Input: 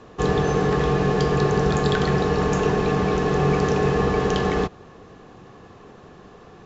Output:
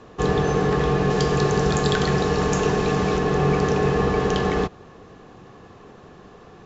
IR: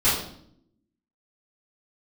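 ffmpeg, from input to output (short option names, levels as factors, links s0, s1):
-filter_complex "[0:a]asettb=1/sr,asplit=3[s0][s1][s2];[s0]atrim=end=1.104[s3];[s1]atrim=start=1.1:end=3.18,asetpts=PTS-STARTPTS,afade=t=in:d=0.004:c=qsin,afade=t=out:st=2.076:d=0.004:c=qsin,aemphasis=mode=production:type=cd[s4];[s2]atrim=start=3.176[s5];[s3][s4]acrossfade=d=0.004:c1=hsin:c2=qsin[s6];[s6][s5]acrossfade=d=0.004:c1=qsin:c2=hsin"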